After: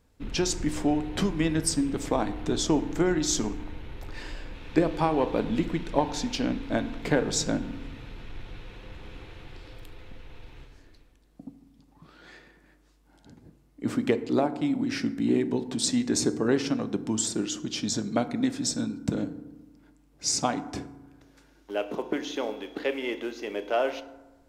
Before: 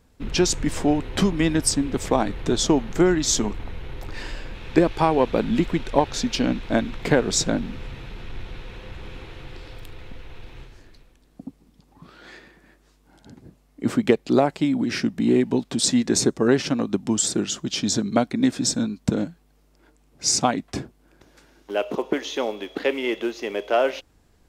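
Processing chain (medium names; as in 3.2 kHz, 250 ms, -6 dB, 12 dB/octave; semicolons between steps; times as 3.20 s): 14.17–14.75 s: transient shaper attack -2 dB, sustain -7 dB; FDN reverb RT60 1.1 s, low-frequency decay 1.35×, high-frequency decay 0.45×, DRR 10.5 dB; trim -6 dB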